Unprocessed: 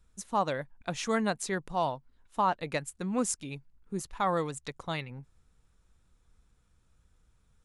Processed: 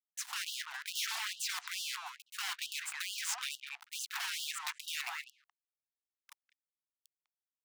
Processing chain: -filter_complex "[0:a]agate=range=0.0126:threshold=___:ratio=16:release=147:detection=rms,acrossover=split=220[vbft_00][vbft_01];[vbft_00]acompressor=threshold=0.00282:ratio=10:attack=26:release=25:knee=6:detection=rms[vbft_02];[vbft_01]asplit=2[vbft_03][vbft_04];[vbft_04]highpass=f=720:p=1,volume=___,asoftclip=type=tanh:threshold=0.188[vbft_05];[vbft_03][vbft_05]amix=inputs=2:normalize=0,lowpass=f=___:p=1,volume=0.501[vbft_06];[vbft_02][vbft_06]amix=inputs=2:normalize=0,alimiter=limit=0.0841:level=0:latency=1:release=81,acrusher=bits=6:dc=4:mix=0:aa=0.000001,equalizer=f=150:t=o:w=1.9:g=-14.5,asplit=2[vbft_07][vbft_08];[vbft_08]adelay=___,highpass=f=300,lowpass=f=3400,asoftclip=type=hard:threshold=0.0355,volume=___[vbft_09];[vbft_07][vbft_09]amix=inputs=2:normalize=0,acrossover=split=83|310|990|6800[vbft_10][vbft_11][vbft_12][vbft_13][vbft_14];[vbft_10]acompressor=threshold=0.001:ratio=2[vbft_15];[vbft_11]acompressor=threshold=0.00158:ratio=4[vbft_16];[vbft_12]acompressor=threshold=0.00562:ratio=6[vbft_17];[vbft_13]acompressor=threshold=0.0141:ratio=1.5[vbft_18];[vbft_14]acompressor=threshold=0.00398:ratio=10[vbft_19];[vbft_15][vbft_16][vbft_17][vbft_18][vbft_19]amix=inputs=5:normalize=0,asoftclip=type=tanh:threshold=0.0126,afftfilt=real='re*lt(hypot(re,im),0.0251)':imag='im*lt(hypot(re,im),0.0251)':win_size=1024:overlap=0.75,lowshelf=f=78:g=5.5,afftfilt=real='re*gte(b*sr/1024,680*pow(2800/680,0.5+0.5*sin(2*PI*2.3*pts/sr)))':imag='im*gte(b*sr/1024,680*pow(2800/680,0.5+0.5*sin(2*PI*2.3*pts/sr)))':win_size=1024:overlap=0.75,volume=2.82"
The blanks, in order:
0.00112, 10, 1900, 200, 0.224